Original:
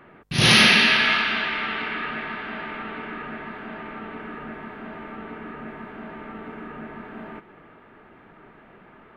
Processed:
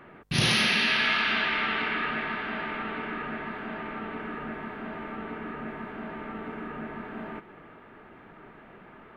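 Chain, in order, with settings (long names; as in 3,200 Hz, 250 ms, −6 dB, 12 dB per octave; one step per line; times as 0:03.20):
downward compressor 6 to 1, threshold −21 dBFS, peak gain reduction 10 dB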